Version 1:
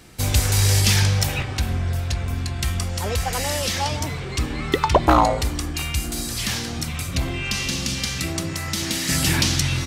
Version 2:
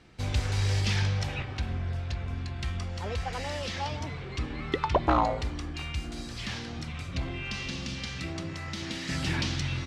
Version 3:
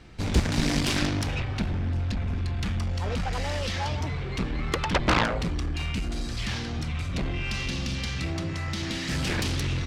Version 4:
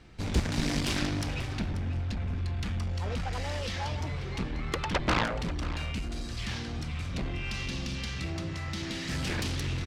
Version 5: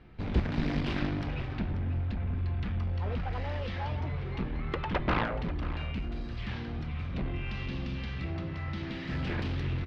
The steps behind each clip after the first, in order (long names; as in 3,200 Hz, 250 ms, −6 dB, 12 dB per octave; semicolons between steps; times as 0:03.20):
low-pass filter 4,000 Hz 12 dB per octave; level −8.5 dB
low-shelf EQ 62 Hz +12 dB; harmonic generator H 7 −6 dB, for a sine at −10.5 dBFS; level −3 dB
single-tap delay 537 ms −14 dB; level −4.5 dB
high-frequency loss of the air 340 metres; on a send at −15 dB: convolution reverb, pre-delay 3 ms